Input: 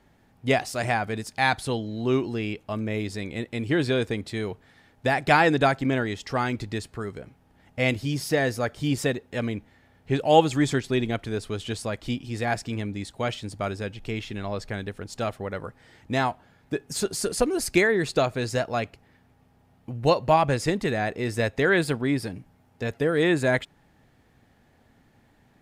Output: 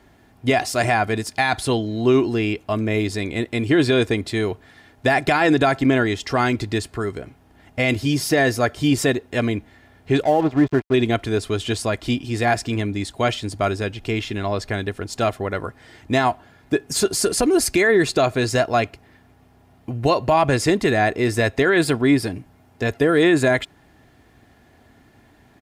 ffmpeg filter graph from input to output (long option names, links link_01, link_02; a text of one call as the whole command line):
ffmpeg -i in.wav -filter_complex "[0:a]asettb=1/sr,asplit=3[link_01][link_02][link_03];[link_01]atrim=end=10.234[link_04];[link_02]atrim=start=10.23:end=10.94,asetpts=PTS-STARTPTS,afade=type=in:duration=0.004:curve=qsin,afade=type=out:start_time=0.706:duration=0.004:curve=qsin,lowpass=1300,aeval=exprs='sgn(val(0))*max(abs(val(0))-0.0141,0)':channel_layout=same[link_05];[link_03]atrim=start=10.936[link_06];[link_04][link_05]acrossfade=duration=0.004:curve1=hsin:curve2=qsin[link_07];[link_07][link_06]acrossfade=duration=0.004:curve1=qsin:curve2=hsin,highpass=41,aecho=1:1:2.9:0.35,alimiter=limit=-15.5dB:level=0:latency=1:release=35,volume=7.5dB" out.wav